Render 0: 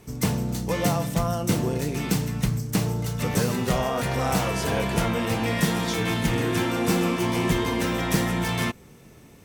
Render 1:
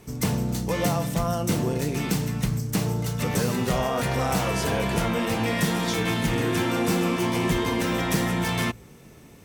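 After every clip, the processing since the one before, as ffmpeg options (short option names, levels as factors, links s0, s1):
-filter_complex "[0:a]bandreject=f=56.37:t=h:w=4,bandreject=f=112.74:t=h:w=4,asplit=2[s0][s1];[s1]alimiter=limit=0.141:level=0:latency=1:release=99,volume=1.26[s2];[s0][s2]amix=inputs=2:normalize=0,volume=0.501"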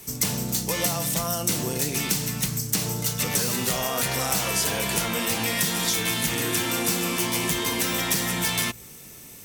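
-filter_complex "[0:a]crystalizer=i=6:c=0,acrossover=split=100|7300[s0][s1][s2];[s0]acompressor=threshold=0.00794:ratio=4[s3];[s1]acompressor=threshold=0.0891:ratio=4[s4];[s2]acompressor=threshold=0.0562:ratio=4[s5];[s3][s4][s5]amix=inputs=3:normalize=0,volume=0.75"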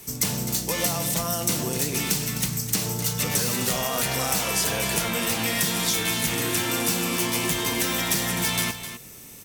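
-af "aecho=1:1:256:0.282"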